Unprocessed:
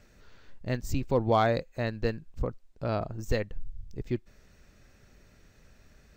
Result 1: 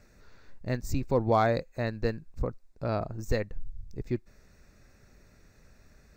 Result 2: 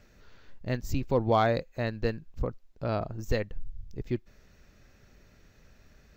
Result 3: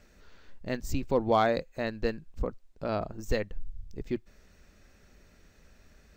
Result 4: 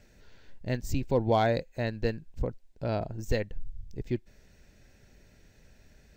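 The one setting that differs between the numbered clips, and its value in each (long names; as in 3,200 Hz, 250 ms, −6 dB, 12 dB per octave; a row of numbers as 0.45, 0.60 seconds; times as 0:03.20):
parametric band, centre frequency: 3,100, 8,700, 120, 1,200 Hertz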